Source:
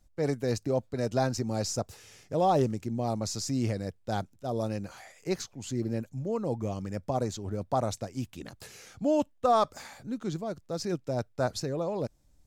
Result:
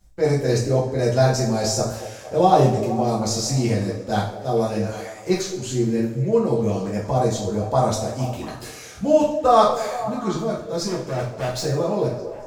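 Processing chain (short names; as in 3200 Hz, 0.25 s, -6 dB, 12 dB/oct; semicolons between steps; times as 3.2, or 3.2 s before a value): 10.86–11.6 hard clip -32.5 dBFS, distortion -17 dB; delay with a stepping band-pass 0.23 s, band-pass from 440 Hz, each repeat 0.7 oct, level -9 dB; two-slope reverb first 0.46 s, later 1.6 s, from -17 dB, DRR -6 dB; gain +3 dB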